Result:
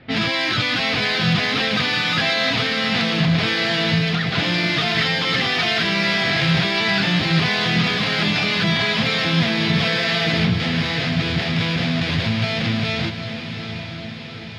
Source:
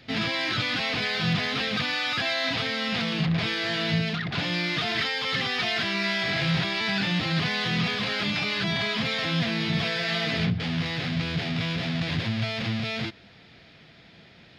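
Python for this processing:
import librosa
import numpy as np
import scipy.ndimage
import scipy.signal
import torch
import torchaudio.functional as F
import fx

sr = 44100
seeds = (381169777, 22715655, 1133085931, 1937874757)

y = fx.env_lowpass(x, sr, base_hz=1900.0, full_db=-24.5)
y = fx.echo_diffused(y, sr, ms=769, feedback_pct=62, wet_db=-9.0)
y = y * 10.0 ** (6.5 / 20.0)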